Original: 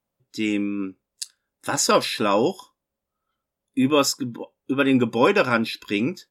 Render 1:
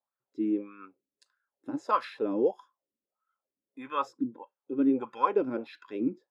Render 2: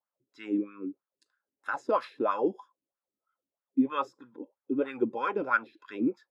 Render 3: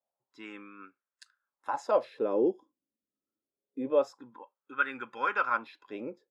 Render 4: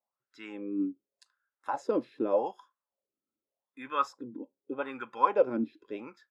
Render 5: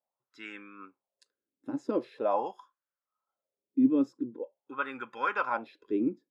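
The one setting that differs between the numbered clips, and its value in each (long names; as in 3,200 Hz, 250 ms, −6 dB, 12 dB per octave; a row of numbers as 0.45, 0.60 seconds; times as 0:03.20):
LFO wah, speed: 1.6, 3.1, 0.25, 0.84, 0.44 Hertz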